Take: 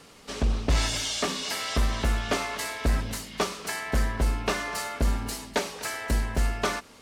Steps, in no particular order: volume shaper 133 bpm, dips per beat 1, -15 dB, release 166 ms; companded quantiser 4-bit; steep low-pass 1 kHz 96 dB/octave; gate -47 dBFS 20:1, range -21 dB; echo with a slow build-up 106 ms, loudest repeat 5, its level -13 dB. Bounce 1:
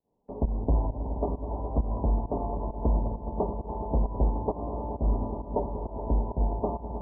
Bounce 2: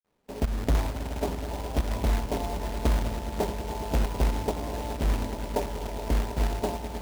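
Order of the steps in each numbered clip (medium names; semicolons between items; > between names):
echo with a slow build-up > volume shaper > companded quantiser > steep low-pass > gate; steep low-pass > volume shaper > echo with a slow build-up > companded quantiser > gate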